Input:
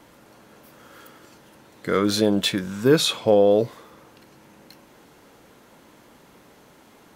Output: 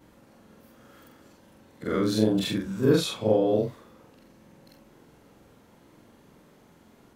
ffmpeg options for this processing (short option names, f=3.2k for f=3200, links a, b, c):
-af "afftfilt=real='re':imag='-im':win_size=4096:overlap=0.75,lowshelf=f=380:g=9.5,volume=-4dB"